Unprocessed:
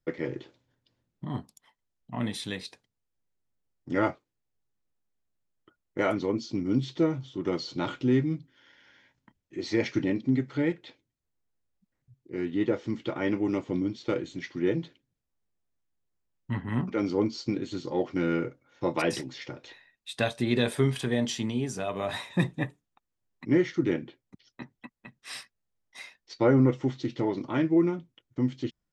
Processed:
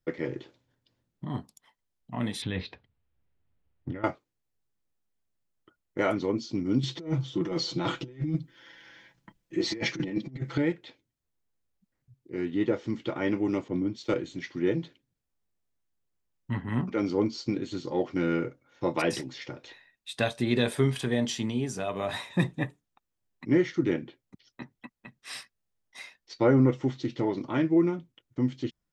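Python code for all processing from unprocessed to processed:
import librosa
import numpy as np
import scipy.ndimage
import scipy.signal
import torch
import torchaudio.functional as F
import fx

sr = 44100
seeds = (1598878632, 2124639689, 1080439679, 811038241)

y = fx.chain(x, sr, fx.lowpass(hz=3400.0, slope=24),
    fx.peak_eq(hz=73.0, db=13.5, octaves=1.3),
    fx.over_compress(threshold_db=-34.0, ratio=-1.0), at=(2.42, 4.04))
y = fx.chain(y, sr, fx.over_compress(threshold_db=-31.0, ratio=-0.5),
    fx.comb(ms=6.0, depth=0.65), at=(6.83, 10.58))
y = fx.chain(y, sr, fx.high_shelf(hz=7700.0, db=11.5),
    fx.band_widen(depth_pct=100), at=(13.68, 14.14))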